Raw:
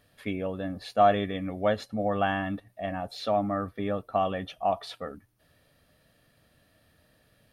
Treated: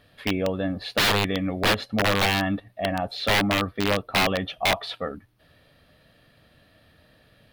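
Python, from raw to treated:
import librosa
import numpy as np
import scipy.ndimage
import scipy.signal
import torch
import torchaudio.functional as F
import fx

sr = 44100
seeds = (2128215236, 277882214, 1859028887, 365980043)

y = (np.mod(10.0 ** (21.0 / 20.0) * x + 1.0, 2.0) - 1.0) / 10.0 ** (21.0 / 20.0)
y = fx.high_shelf_res(y, sr, hz=5100.0, db=-7.0, q=1.5)
y = y * 10.0 ** (6.5 / 20.0)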